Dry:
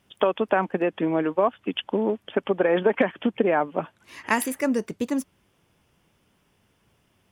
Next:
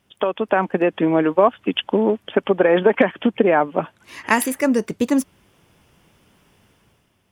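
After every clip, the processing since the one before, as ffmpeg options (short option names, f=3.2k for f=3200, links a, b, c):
-af "dynaudnorm=f=120:g=9:m=9dB"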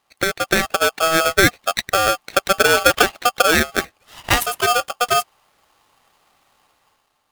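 -filter_complex "[0:a]asplit=2[a][b];[b]aeval=exprs='sgn(val(0))*max(abs(val(0))-0.0282,0)':c=same,volume=-4dB[c];[a][c]amix=inputs=2:normalize=0,aeval=exprs='val(0)*sgn(sin(2*PI*970*n/s))':c=same,volume=-3.5dB"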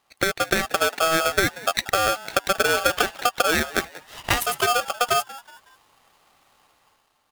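-filter_complex "[0:a]acompressor=threshold=-17dB:ratio=6,asplit=4[a][b][c][d];[b]adelay=185,afreqshift=110,volume=-18.5dB[e];[c]adelay=370,afreqshift=220,volume=-26.7dB[f];[d]adelay=555,afreqshift=330,volume=-34.9dB[g];[a][e][f][g]amix=inputs=4:normalize=0"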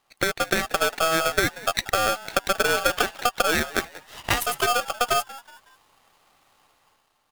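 -af "aeval=exprs='if(lt(val(0),0),0.708*val(0),val(0))':c=same"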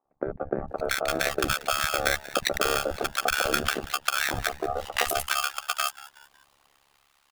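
-filter_complex "[0:a]acrossover=split=180|930[a][b][c];[a]adelay=50[d];[c]adelay=680[e];[d][b][e]amix=inputs=3:normalize=0,tremolo=f=70:d=0.974,volume=2dB"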